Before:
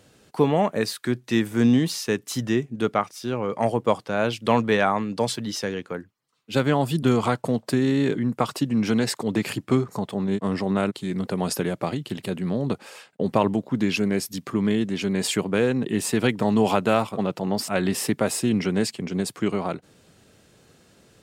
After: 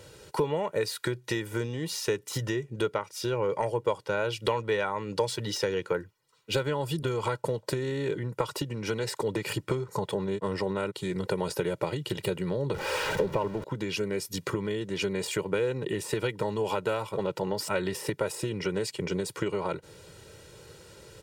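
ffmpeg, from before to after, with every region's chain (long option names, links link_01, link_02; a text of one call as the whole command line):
ffmpeg -i in.wav -filter_complex "[0:a]asettb=1/sr,asplit=3[link_01][link_02][link_03];[link_01]atrim=end=12.744[link_04];[link_02]atrim=start=12.74:end=13.64,asetpts=PTS-STARTPTS,afade=type=in:duration=0.004:curve=qsin,afade=type=out:start_time=0.896:duration=0.004:curve=qsin,aeval=exprs='val(0)+0.5*0.0447*sgn(val(0))':channel_layout=same,lowpass=frequency=2100:poles=1[link_05];[link_03]atrim=start=13.636[link_06];[link_04][link_05]acrossfade=duration=0.004:curve1=hsin:curve2=qsin[link_07];[link_07][link_06]acrossfade=duration=0.004:curve1=qsin:curve2=hsin,acompressor=threshold=-30dB:ratio=10,aecho=1:1:2.1:0.79,deesser=0.75,volume=4dB" out.wav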